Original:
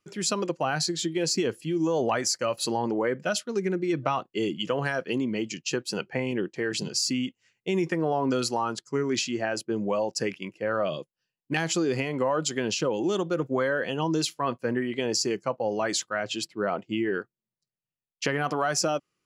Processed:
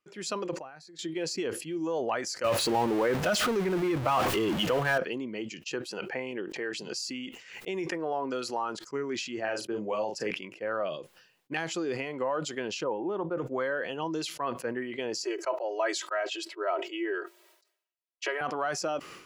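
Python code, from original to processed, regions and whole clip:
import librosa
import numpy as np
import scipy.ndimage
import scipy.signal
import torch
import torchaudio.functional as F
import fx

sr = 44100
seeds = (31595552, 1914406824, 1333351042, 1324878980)

y = fx.chain(x, sr, fx.notch(hz=3000.0, q=5.2),
    fx.level_steps(step_db=22), at=(0.56, 0.99))
y = fx.chain(y, sr, fx.zero_step(step_db=-28.5),
    fx.peak_eq(hz=80.0, db=11.5, octaves=1.5),
    fx.env_flatten(amount_pct=100), at=(2.44, 4.98))
y = fx.chain(y, sr, fx.peak_eq(hz=76.0, db=-6.5, octaves=2.5),
    fx.pre_swell(db_per_s=86.0), at=(5.91, 8.92))
y = fx.chain(y, sr, fx.doubler(ms=38.0, db=-5.5),
    fx.band_squash(depth_pct=40), at=(9.44, 10.31))
y = fx.chain(y, sr, fx.lowpass(hz=1400.0, slope=12),
    fx.peak_eq(hz=920.0, db=8.0, octaves=0.31), at=(12.84, 13.38))
y = fx.chain(y, sr, fx.steep_highpass(hz=340.0, slope=72),
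    fx.comb(ms=3.1, depth=0.84), at=(15.24, 18.41))
y = fx.bass_treble(y, sr, bass_db=-10, treble_db=-7)
y = fx.sustainer(y, sr, db_per_s=86.0)
y = F.gain(torch.from_numpy(y), -4.0).numpy()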